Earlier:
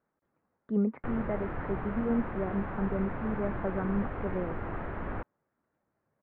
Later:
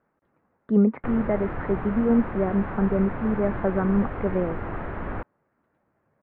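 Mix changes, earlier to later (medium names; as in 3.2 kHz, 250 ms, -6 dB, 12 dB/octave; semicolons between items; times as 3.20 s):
speech +9.0 dB; background +4.5 dB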